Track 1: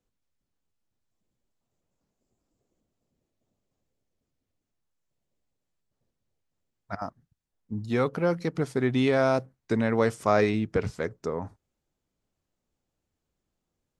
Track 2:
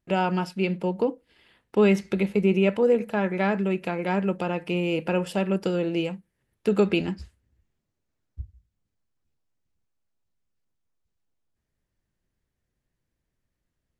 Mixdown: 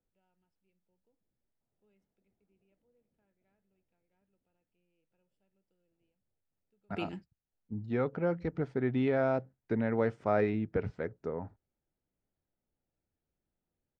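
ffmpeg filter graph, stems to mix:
ffmpeg -i stem1.wav -i stem2.wav -filter_complex "[0:a]lowpass=2000,volume=-5.5dB,asplit=2[link_01][link_02];[1:a]adelay=50,volume=-13.5dB[link_03];[link_02]apad=whole_len=619238[link_04];[link_03][link_04]sidechaingate=range=-41dB:threshold=-56dB:ratio=16:detection=peak[link_05];[link_01][link_05]amix=inputs=2:normalize=0,equalizer=frequency=1100:width=6.9:gain=-9.5" out.wav

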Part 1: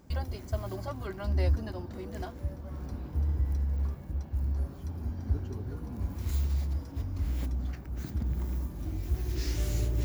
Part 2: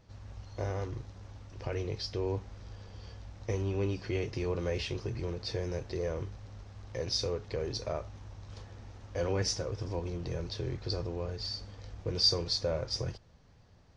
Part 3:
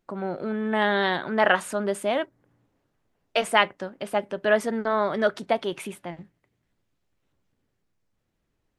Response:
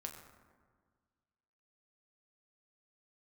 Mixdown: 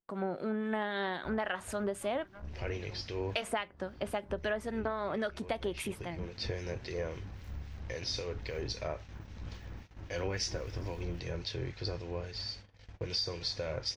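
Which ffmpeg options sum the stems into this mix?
-filter_complex "[0:a]highshelf=frequency=2300:width_type=q:width=3:gain=-10.5,aeval=exprs='(tanh(31.6*val(0)+0.65)-tanh(0.65))/31.6':channel_layout=same,adelay=1150,volume=-8dB[link_01];[1:a]bandreject=frequency=1200:width=16,acontrast=80,equalizer=frequency=2300:width_type=o:width=1.6:gain=9,adelay=950,volume=-8dB[link_02];[2:a]volume=-0.5dB,asplit=2[link_03][link_04];[link_04]apad=whole_len=657582[link_05];[link_02][link_05]sidechaincompress=threshold=-37dB:ratio=12:attack=8.1:release=390[link_06];[link_01][link_06][link_03]amix=inputs=3:normalize=0,agate=range=-19dB:threshold=-44dB:ratio=16:detection=peak,acrossover=split=1800[link_07][link_08];[link_07]aeval=exprs='val(0)*(1-0.5/2+0.5/2*cos(2*PI*3.7*n/s))':channel_layout=same[link_09];[link_08]aeval=exprs='val(0)*(1-0.5/2-0.5/2*cos(2*PI*3.7*n/s))':channel_layout=same[link_10];[link_09][link_10]amix=inputs=2:normalize=0,acompressor=threshold=-30dB:ratio=16"

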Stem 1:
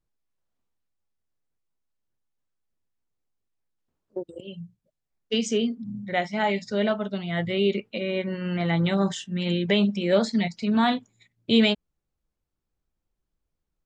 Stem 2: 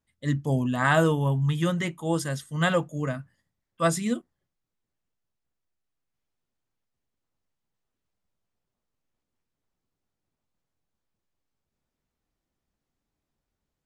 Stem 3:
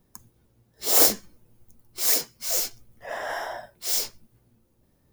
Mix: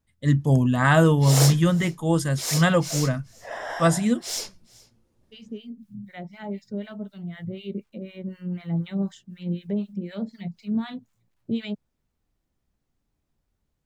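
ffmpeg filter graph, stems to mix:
ffmpeg -i stem1.wav -i stem2.wav -i stem3.wav -filter_complex "[0:a]equalizer=frequency=150:width=0.49:gain=14,acrusher=bits=9:mix=0:aa=0.000001,acrossover=split=910[link_01][link_02];[link_01]aeval=exprs='val(0)*(1-1/2+1/2*cos(2*PI*4*n/s))':channel_layout=same[link_03];[link_02]aeval=exprs='val(0)*(1-1/2-1/2*cos(2*PI*4*n/s))':channel_layout=same[link_04];[link_03][link_04]amix=inputs=2:normalize=0,volume=-12.5dB[link_05];[1:a]lowshelf=frequency=190:gain=8,volume=2dB,asplit=2[link_06][link_07];[2:a]lowpass=8500,adelay=400,volume=-1.5dB,asplit=2[link_08][link_09];[link_09]volume=-23.5dB[link_10];[link_07]apad=whole_len=610891[link_11];[link_05][link_11]sidechaincompress=threshold=-36dB:ratio=8:attack=16:release=1290[link_12];[link_10]aecho=0:1:423:1[link_13];[link_12][link_06][link_08][link_13]amix=inputs=4:normalize=0" out.wav

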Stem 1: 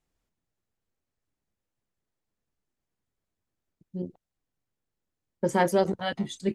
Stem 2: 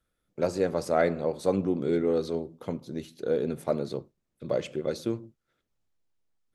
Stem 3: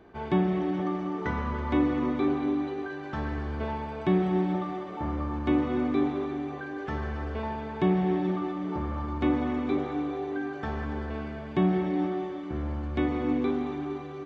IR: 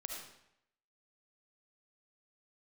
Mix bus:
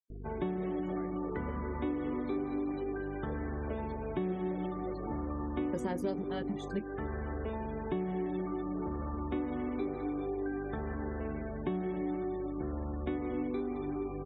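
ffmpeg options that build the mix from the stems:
-filter_complex "[0:a]adelay=300,volume=1.5dB[link_01];[1:a]alimiter=limit=-19dB:level=0:latency=1:release=366,acrusher=bits=7:mix=0:aa=0.000001,volume=-12dB[link_02];[2:a]equalizer=frequency=420:width_type=o:width=1.3:gain=5,aeval=exprs='val(0)+0.01*(sin(2*PI*50*n/s)+sin(2*PI*2*50*n/s)/2+sin(2*PI*3*50*n/s)/3+sin(2*PI*4*50*n/s)/4+sin(2*PI*5*50*n/s)/5)':channel_layout=same,adelay=100,volume=-2.5dB[link_03];[link_01][link_02][link_03]amix=inputs=3:normalize=0,afftfilt=real='re*gte(hypot(re,im),0.00708)':imag='im*gte(hypot(re,im),0.00708)':win_size=1024:overlap=0.75,acrossover=split=460|2100[link_04][link_05][link_06];[link_04]acompressor=threshold=-35dB:ratio=4[link_07];[link_05]acompressor=threshold=-44dB:ratio=4[link_08];[link_06]acompressor=threshold=-57dB:ratio=4[link_09];[link_07][link_08][link_09]amix=inputs=3:normalize=0"

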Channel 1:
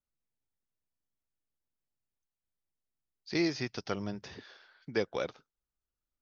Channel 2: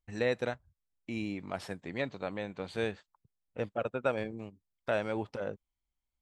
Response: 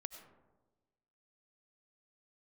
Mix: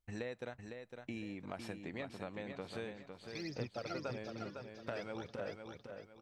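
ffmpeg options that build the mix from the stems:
-filter_complex "[0:a]aphaser=in_gain=1:out_gain=1:delay=3.7:decay=0.79:speed=0.56:type=triangular,volume=-16dB,asplit=2[link_01][link_02];[link_02]volume=-3dB[link_03];[1:a]acompressor=threshold=-40dB:ratio=6,volume=-0.5dB,asplit=2[link_04][link_05];[link_05]volume=-6.5dB[link_06];[link_03][link_06]amix=inputs=2:normalize=0,aecho=0:1:506|1012|1518|2024|2530:1|0.34|0.116|0.0393|0.0134[link_07];[link_01][link_04][link_07]amix=inputs=3:normalize=0"

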